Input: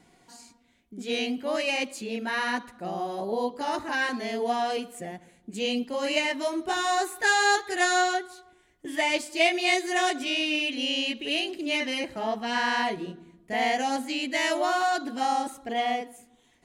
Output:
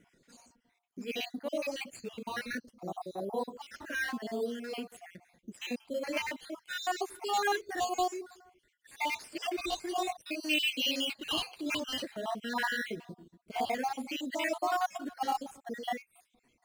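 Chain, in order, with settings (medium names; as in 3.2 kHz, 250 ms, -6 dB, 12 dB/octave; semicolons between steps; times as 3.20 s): random holes in the spectrogram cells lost 58%; 10.43–12.40 s: treble shelf 2.8 kHz +8.5 dB; in parallel at -7 dB: decimation with a swept rate 8×, swing 100% 0.54 Hz; on the sum: trim -7 dB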